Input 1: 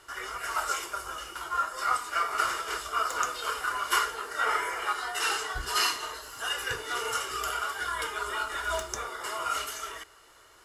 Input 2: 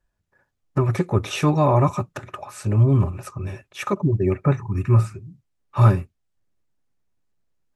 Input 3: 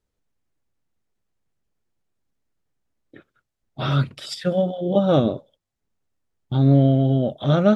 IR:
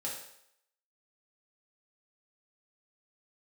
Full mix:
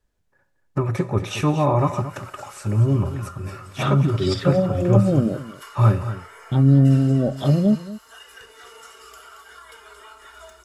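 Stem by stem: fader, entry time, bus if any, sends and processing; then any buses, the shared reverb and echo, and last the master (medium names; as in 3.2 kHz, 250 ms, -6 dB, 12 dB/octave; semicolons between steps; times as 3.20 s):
-11.0 dB, 1.70 s, no send, echo send -8.5 dB, comb 4.5 ms, depth 49%; compression 2.5:1, threshold -31 dBFS, peak gain reduction 7.5 dB
-3.0 dB, 0.00 s, send -11.5 dB, echo send -11 dB, none
+2.0 dB, 0.00 s, no send, echo send -16.5 dB, low-pass that closes with the level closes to 310 Hz, closed at -14 dBFS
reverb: on, RT60 0.75 s, pre-delay 3 ms
echo: delay 227 ms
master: none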